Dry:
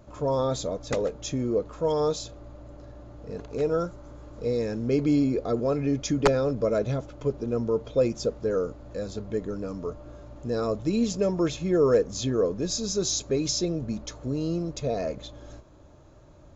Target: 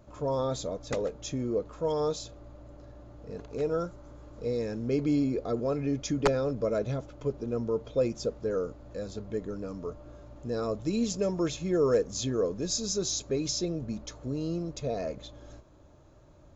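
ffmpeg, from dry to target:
-filter_complex "[0:a]asettb=1/sr,asplit=3[a][b][c];[a]atrim=end=10.814[d];[b]atrim=start=10.81:end=12.98,asetpts=PTS-STARTPTS,afade=t=in:d=0.004:c=qsin,afade=t=out:st=2.166:d=0.004:c=qsin,highshelf=f=6.3k:g=7.5[e];[c]atrim=start=12.976[f];[d][e]acrossfade=d=0.004:c1=hsin:c2=qsin[g];[g][f]acrossfade=d=0.004:c1=qsin:c2=hsin,volume=-4dB"

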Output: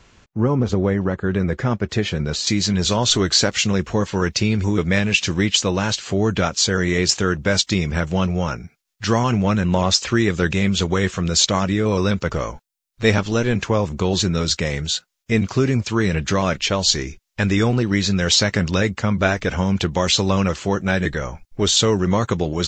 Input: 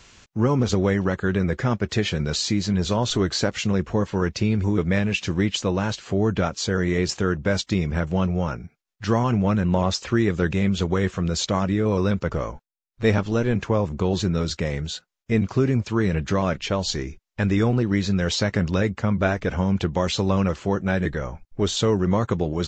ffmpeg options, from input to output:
-af "asetnsamples=n=441:p=0,asendcmd='1.31 highshelf g -2;2.47 highshelf g 10',highshelf=f=2.1k:g=-9.5,volume=2dB"

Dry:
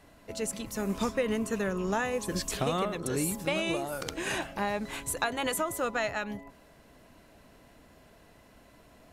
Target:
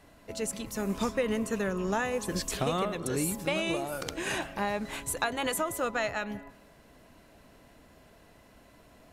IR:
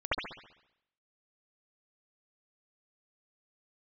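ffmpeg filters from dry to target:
-filter_complex "[0:a]asplit=2[a][b];[1:a]atrim=start_sample=2205,adelay=121[c];[b][c]afir=irnorm=-1:irlink=0,volume=-31.5dB[d];[a][d]amix=inputs=2:normalize=0"

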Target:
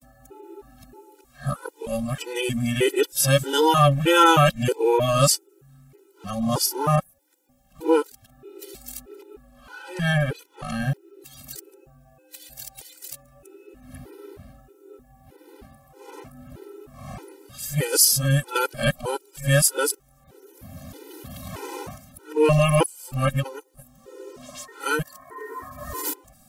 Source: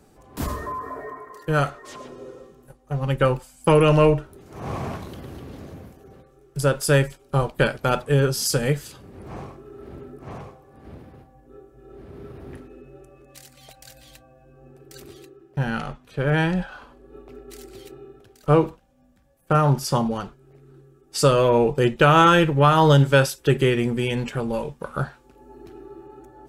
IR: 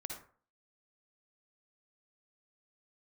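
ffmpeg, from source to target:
-af "areverse,aemphasis=mode=production:type=75kf,afftfilt=real='re*gt(sin(2*PI*1.6*pts/sr)*(1-2*mod(floor(b*sr/1024/260),2)),0)':imag='im*gt(sin(2*PI*1.6*pts/sr)*(1-2*mod(floor(b*sr/1024/260),2)),0)':win_size=1024:overlap=0.75"

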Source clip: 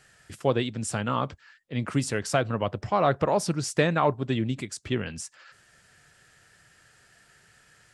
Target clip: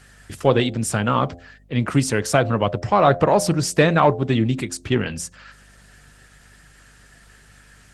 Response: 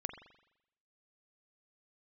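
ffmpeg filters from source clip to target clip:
-filter_complex "[0:a]bandreject=f=87.12:t=h:w=4,bandreject=f=174.24:t=h:w=4,bandreject=f=261.36:t=h:w=4,bandreject=f=348.48:t=h:w=4,bandreject=f=435.6:t=h:w=4,bandreject=f=522.72:t=h:w=4,bandreject=f=609.84:t=h:w=4,bandreject=f=696.96:t=h:w=4,bandreject=f=784.08:t=h:w=4,asplit=2[a][b];[b]asoftclip=type=tanh:threshold=-21dB,volume=-11dB[c];[a][c]amix=inputs=2:normalize=0,aeval=exprs='val(0)+0.00141*(sin(2*PI*50*n/s)+sin(2*PI*2*50*n/s)/2+sin(2*PI*3*50*n/s)/3+sin(2*PI*4*50*n/s)/4+sin(2*PI*5*50*n/s)/5)':c=same,volume=6.5dB" -ar 48000 -c:a libopus -b:a 20k

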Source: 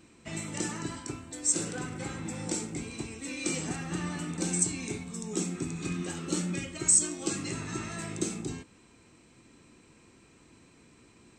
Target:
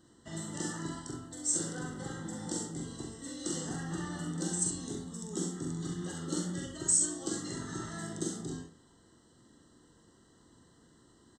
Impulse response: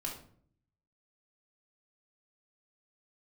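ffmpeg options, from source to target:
-filter_complex "[0:a]asuperstop=centerf=2400:order=12:qfactor=2.8,aecho=1:1:43|67:0.596|0.447,asplit=2[a][b];[1:a]atrim=start_sample=2205,adelay=112[c];[b][c]afir=irnorm=-1:irlink=0,volume=-22.5dB[d];[a][d]amix=inputs=2:normalize=0,volume=-5.5dB"

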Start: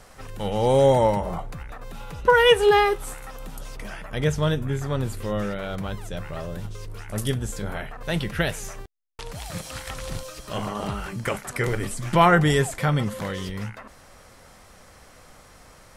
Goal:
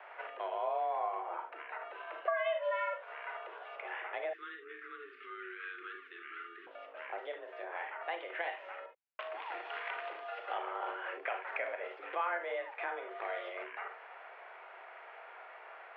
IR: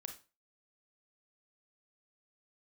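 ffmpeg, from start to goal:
-filter_complex "[1:a]atrim=start_sample=2205,atrim=end_sample=3969[a];[0:a][a]afir=irnorm=-1:irlink=0,acompressor=threshold=-38dB:ratio=6,highpass=f=300:t=q:w=0.5412,highpass=f=300:t=q:w=1.307,lowpass=f=2.6k:t=q:w=0.5176,lowpass=f=2.6k:t=q:w=0.7071,lowpass=f=2.6k:t=q:w=1.932,afreqshift=170,asettb=1/sr,asplit=3[b][c][d];[b]atrim=end=4.334[e];[c]atrim=start=4.33:end=6.67,asetpts=PTS-STARTPTS,afade=t=in:d=0.004:c=qsin,afade=t=out:st=2.336:d=0.004:c=qsin,asuperstop=centerf=710:order=20:qfactor=1[f];[d]atrim=start=6.666[g];[e][f]acrossfade=d=0.004:c1=hsin:c2=qsin[h];[h][g]acrossfade=d=0.004:c1=qsin:c2=hsin,volume=5.5dB"

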